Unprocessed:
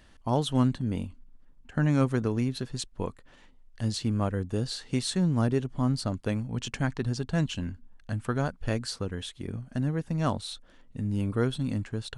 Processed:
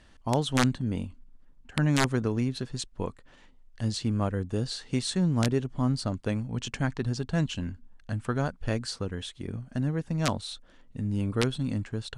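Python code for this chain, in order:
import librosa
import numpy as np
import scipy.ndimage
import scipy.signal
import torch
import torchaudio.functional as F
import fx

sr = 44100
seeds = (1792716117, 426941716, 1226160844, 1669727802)

y = (np.mod(10.0 ** (13.5 / 20.0) * x + 1.0, 2.0) - 1.0) / 10.0 ** (13.5 / 20.0)
y = scipy.signal.sosfilt(scipy.signal.butter(4, 10000.0, 'lowpass', fs=sr, output='sos'), y)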